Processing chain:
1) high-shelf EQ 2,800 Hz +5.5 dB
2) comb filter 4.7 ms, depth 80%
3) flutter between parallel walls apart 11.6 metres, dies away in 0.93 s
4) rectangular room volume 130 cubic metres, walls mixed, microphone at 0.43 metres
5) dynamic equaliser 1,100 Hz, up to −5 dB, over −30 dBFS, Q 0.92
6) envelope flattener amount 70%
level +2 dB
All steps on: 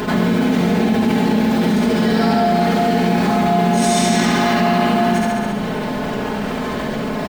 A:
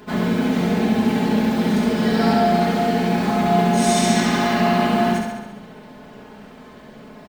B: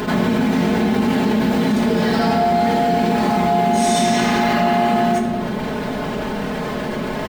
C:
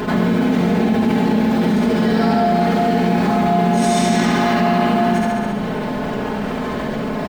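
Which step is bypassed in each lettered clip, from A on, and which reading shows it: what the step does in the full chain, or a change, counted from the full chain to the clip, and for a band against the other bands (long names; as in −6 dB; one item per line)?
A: 6, change in crest factor +2.0 dB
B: 3, 1 kHz band +2.5 dB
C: 1, 8 kHz band −4.5 dB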